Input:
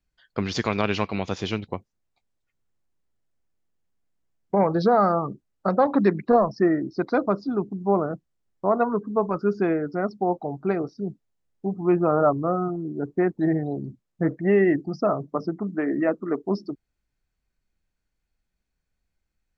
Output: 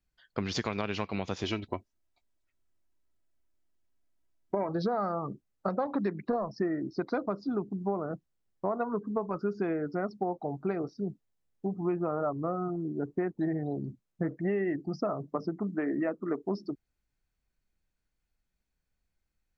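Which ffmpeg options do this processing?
-filter_complex "[0:a]asettb=1/sr,asplit=3[s0][s1][s2];[s0]atrim=end=1.434[s3];[s1]atrim=start=1.43:end=4.69,asetpts=PTS-STARTPTS,afade=t=in:d=0.004:c=qsin,afade=t=out:st=3.256:d=0.004:c=qsin,aecho=1:1:3.1:0.54,atrim=end_sample=143766[s4];[s2]atrim=start=4.686[s5];[s3][s4]acrossfade=d=0.004:c1=hsin:c2=qsin[s6];[s6][s5]acrossfade=d=0.004:c1=qsin:c2=hsin,acompressor=threshold=0.0631:ratio=6,volume=0.708"

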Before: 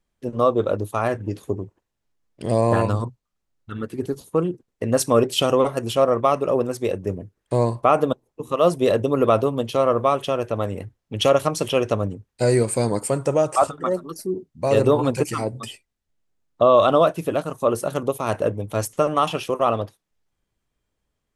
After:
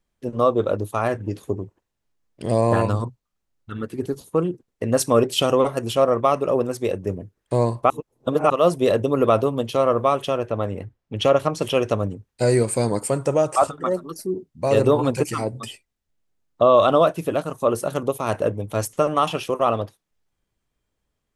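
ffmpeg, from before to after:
-filter_complex "[0:a]asettb=1/sr,asplit=3[s0][s1][s2];[s0]atrim=end=10.384[s3];[s1]atrim=start=10.38:end=11.62,asetpts=PTS-STARTPTS,afade=t=in:d=0.004:c=qsin,afade=t=out:st=1.236:d=0.004:c=qsin,lowpass=f=3200:p=1[s4];[s2]atrim=start=11.616[s5];[s3][s4]acrossfade=d=0.004:c1=hsin:c2=qsin[s6];[s6][s5]acrossfade=d=0.004:c1=qsin:c2=hsin,asplit=3[s7][s8][s9];[s7]atrim=end=7.902[s10];[s8]atrim=start=7.898:end=8.502,asetpts=PTS-STARTPTS,areverse[s11];[s9]atrim=start=8.498[s12];[s10][s11]acrossfade=d=0.004:c1=hsin:c2=hsin[s13];[s13][s12]acrossfade=d=0.004:c1=hsin:c2=hsin"

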